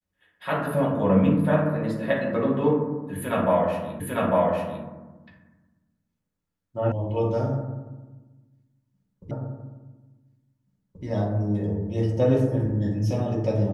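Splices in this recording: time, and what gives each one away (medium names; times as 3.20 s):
4.00 s: repeat of the last 0.85 s
6.92 s: sound stops dead
9.31 s: repeat of the last 1.73 s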